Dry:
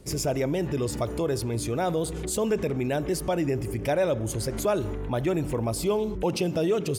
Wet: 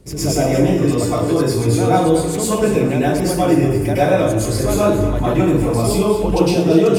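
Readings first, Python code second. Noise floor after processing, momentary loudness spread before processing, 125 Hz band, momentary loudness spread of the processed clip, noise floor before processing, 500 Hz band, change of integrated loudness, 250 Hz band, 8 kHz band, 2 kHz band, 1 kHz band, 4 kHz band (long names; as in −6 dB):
−21 dBFS, 3 LU, +12.0 dB, 3 LU, −33 dBFS, +10.5 dB, +11.5 dB, +13.0 dB, +9.0 dB, +10.0 dB, +12.5 dB, +9.5 dB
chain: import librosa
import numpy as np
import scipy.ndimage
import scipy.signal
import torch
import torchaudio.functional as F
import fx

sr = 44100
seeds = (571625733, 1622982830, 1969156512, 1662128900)

p1 = fx.low_shelf(x, sr, hz=370.0, db=4.0)
p2 = p1 + fx.echo_thinned(p1, sr, ms=231, feedback_pct=30, hz=420.0, wet_db=-11.5, dry=0)
y = fx.rev_plate(p2, sr, seeds[0], rt60_s=0.63, hf_ratio=0.75, predelay_ms=95, drr_db=-9.5)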